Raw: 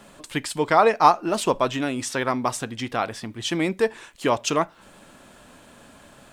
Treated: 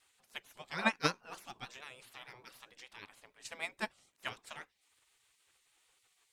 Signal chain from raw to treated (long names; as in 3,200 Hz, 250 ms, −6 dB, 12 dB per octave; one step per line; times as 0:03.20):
gate on every frequency bin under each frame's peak −15 dB weak
pitch vibrato 6.7 Hz 58 cents
expander for the loud parts 2.5 to 1, over −35 dBFS